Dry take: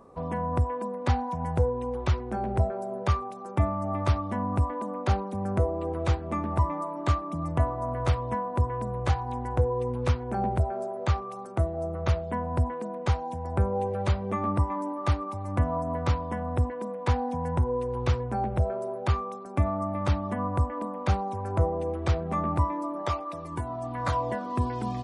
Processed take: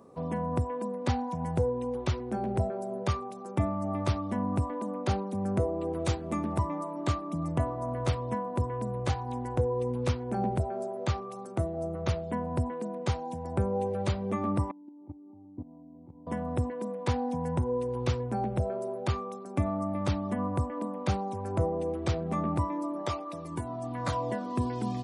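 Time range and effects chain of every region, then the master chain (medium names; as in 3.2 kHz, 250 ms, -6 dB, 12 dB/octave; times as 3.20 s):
5.95–6.58 s: treble shelf 7.6 kHz +11.5 dB + careless resampling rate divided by 2×, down none, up filtered
14.71–16.27 s: cascade formant filter u + level held to a coarse grid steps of 17 dB
whole clip: high-pass 130 Hz 12 dB/octave; peaking EQ 1.2 kHz -7.5 dB 2.5 oct; trim +2.5 dB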